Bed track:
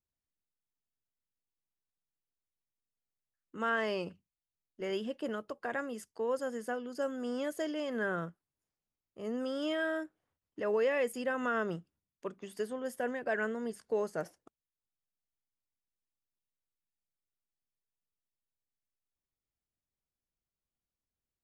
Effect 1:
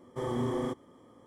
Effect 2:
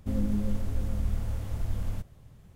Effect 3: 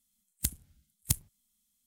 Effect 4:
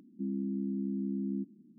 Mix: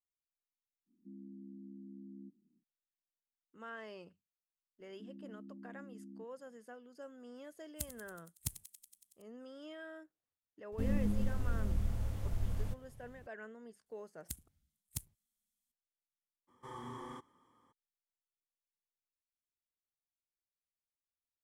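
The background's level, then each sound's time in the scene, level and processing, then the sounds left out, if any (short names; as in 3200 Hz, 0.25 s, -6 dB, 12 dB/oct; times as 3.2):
bed track -15.5 dB
0.86 add 4 -17 dB, fades 0.05 s
4.8 add 4 -17.5 dB
7.36 add 3 -11 dB + thinning echo 93 ms, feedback 75%, high-pass 1200 Hz, level -13 dB
10.72 add 2 -5 dB
13.86 add 3 -13.5 dB
16.47 add 1 -10.5 dB, fades 0.02 s + resonant low shelf 780 Hz -6 dB, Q 3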